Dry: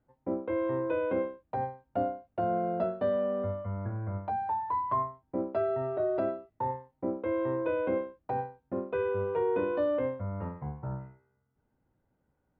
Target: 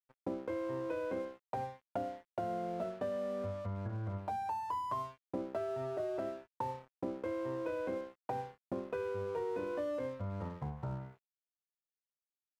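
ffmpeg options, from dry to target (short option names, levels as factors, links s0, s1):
-af "acompressor=threshold=0.00891:ratio=4,aeval=exprs='sgn(val(0))*max(abs(val(0))-0.00112,0)':c=same,volume=1.68"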